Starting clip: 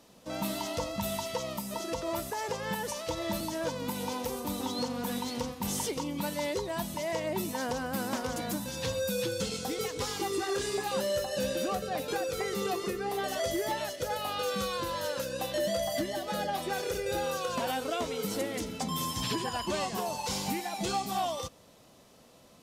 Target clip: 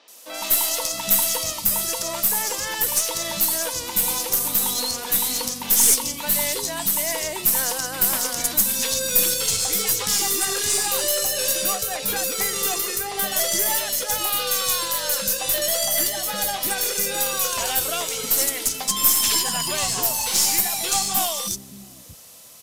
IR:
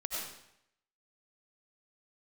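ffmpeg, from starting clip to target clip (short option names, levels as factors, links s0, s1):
-filter_complex "[0:a]crystalizer=i=9.5:c=0,acrossover=split=290|3900[s0][s1][s2];[s2]adelay=80[s3];[s0]adelay=660[s4];[s4][s1][s3]amix=inputs=3:normalize=0,aeval=exprs='0.75*(cos(1*acos(clip(val(0)/0.75,-1,1)))-cos(1*PI/2))+0.0473*(cos(6*acos(clip(val(0)/0.75,-1,1)))-cos(6*PI/2))':c=same"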